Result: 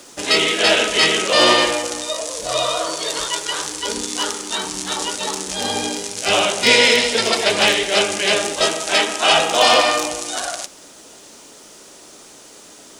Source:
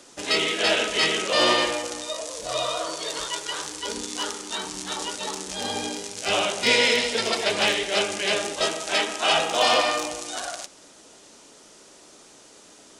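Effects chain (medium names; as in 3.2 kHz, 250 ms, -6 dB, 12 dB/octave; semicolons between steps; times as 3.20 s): treble shelf 11 kHz +6 dB; bit crusher 10-bit; trim +6.5 dB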